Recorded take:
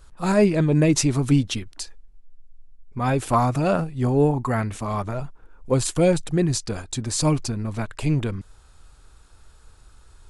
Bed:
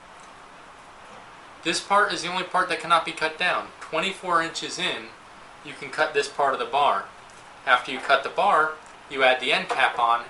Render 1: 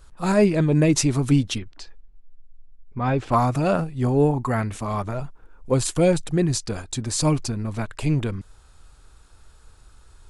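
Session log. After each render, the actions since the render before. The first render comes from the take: 1.58–3.32 air absorption 160 m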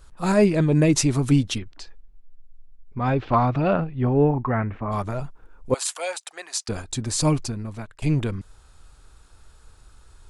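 3.14–4.91 LPF 4500 Hz -> 2000 Hz 24 dB/oct; 5.74–6.69 HPF 730 Hz 24 dB/oct; 7.31–8.02 fade out, to -14.5 dB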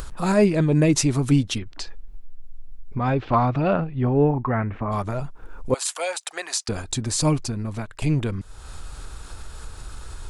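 upward compressor, threshold -21 dBFS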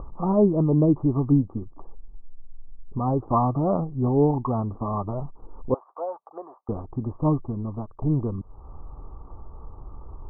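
rippled Chebyshev low-pass 1200 Hz, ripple 3 dB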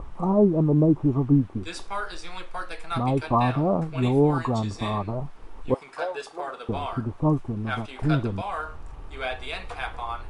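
add bed -12 dB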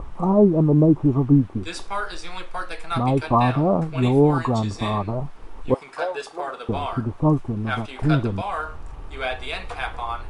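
gain +3.5 dB

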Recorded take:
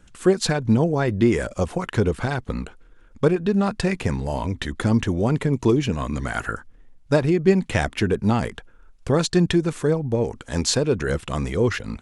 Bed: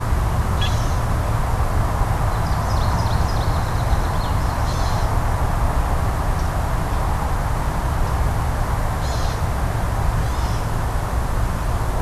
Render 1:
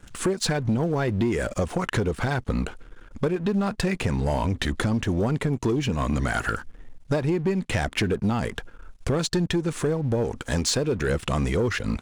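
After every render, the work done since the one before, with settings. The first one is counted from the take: compressor 6:1, threshold -27 dBFS, peak gain reduction 15.5 dB; sample leveller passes 2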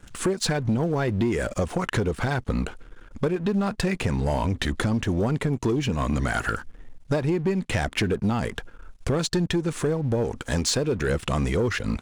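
nothing audible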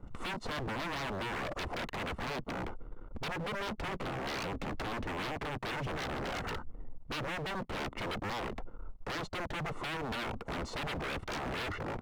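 polynomial smoothing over 65 samples; wavefolder -32 dBFS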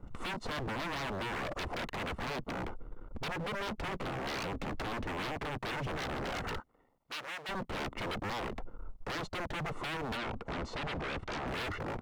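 6.6–7.49 HPF 1400 Hz 6 dB/oct; 10.17–11.48 air absorption 67 m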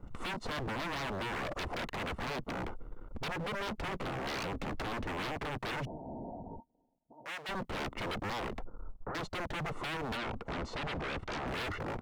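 5.85–7.26 rippled Chebyshev low-pass 950 Hz, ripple 9 dB; 8.65–9.15 steep low-pass 1500 Hz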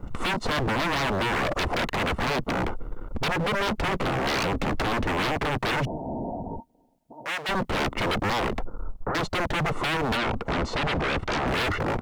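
gain +11.5 dB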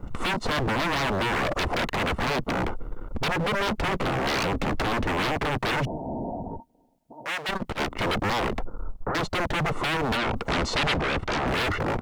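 6.47–8 core saturation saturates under 86 Hz; 10.36–10.96 high shelf 2600 Hz +9 dB

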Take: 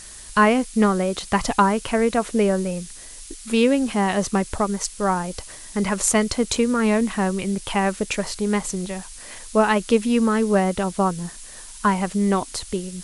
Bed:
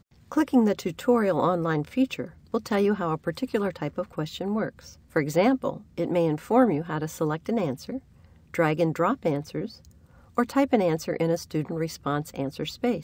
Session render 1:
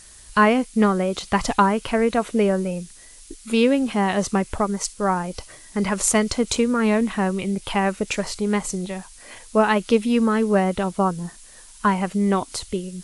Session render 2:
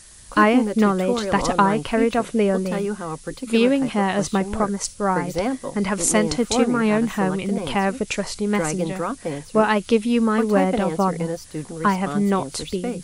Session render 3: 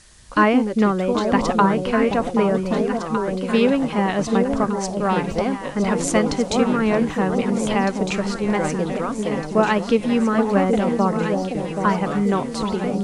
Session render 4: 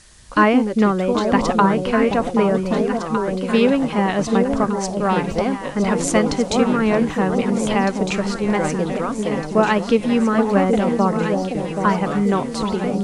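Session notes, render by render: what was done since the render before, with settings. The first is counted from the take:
noise print and reduce 6 dB
add bed -2.5 dB
air absorption 60 m; echo with dull and thin repeats by turns 0.779 s, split 890 Hz, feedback 68%, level -5 dB
gain +1.5 dB; limiter -3 dBFS, peak gain reduction 1 dB

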